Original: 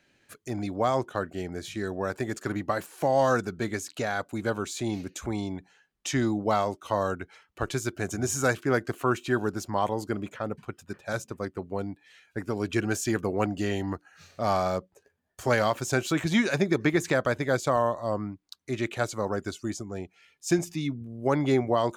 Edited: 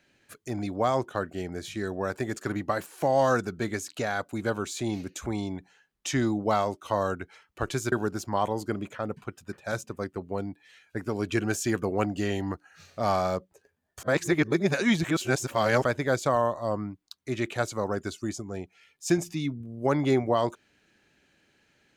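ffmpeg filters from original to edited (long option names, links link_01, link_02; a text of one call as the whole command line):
ffmpeg -i in.wav -filter_complex "[0:a]asplit=4[link_01][link_02][link_03][link_04];[link_01]atrim=end=7.922[link_05];[link_02]atrim=start=9.328:end=15.442[link_06];[link_03]atrim=start=15.438:end=17.252,asetpts=PTS-STARTPTS,areverse[link_07];[link_04]atrim=start=17.248[link_08];[link_05][link_06]acrossfade=duration=0.004:curve1=hsin:curve2=hsin[link_09];[link_09][link_07]acrossfade=duration=0.004:curve1=hsin:curve2=hsin[link_10];[link_10][link_08]acrossfade=duration=0.004:curve1=hsin:curve2=hsin" out.wav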